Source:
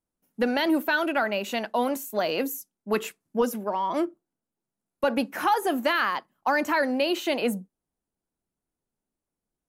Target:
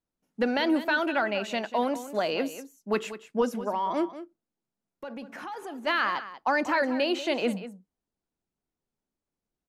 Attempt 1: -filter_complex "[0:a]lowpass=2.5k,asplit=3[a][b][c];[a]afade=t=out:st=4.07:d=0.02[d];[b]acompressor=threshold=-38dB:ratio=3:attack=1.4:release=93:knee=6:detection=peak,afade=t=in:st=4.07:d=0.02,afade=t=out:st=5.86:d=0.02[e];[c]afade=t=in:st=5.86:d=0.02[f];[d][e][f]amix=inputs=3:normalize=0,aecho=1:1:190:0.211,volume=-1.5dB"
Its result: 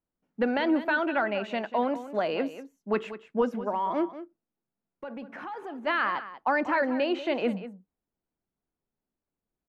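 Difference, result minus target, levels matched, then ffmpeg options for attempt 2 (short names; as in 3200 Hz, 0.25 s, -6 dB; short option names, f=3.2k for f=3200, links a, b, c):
8000 Hz band -15.5 dB
-filter_complex "[0:a]lowpass=6.9k,asplit=3[a][b][c];[a]afade=t=out:st=4.07:d=0.02[d];[b]acompressor=threshold=-38dB:ratio=3:attack=1.4:release=93:knee=6:detection=peak,afade=t=in:st=4.07:d=0.02,afade=t=out:st=5.86:d=0.02[e];[c]afade=t=in:st=5.86:d=0.02[f];[d][e][f]amix=inputs=3:normalize=0,aecho=1:1:190:0.211,volume=-1.5dB"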